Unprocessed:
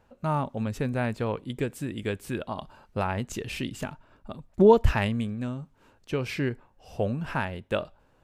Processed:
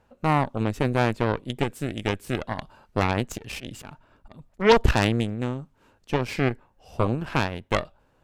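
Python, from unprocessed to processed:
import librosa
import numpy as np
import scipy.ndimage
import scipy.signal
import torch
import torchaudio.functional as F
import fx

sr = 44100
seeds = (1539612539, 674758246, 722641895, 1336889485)

y = fx.cheby_harmonics(x, sr, harmonics=(8,), levels_db=(-11,), full_scale_db=-6.5)
y = fx.auto_swell(y, sr, attack_ms=131.0, at=(3.08, 4.76))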